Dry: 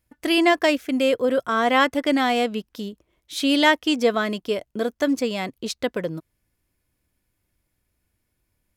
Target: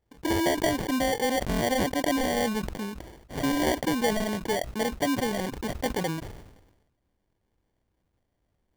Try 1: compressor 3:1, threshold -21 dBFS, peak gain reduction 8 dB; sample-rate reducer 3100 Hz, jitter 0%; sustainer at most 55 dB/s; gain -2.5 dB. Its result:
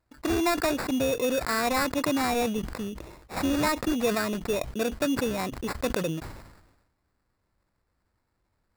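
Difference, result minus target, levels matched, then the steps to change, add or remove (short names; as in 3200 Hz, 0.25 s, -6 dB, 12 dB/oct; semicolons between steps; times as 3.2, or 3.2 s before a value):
sample-rate reducer: distortion -9 dB
change: sample-rate reducer 1300 Hz, jitter 0%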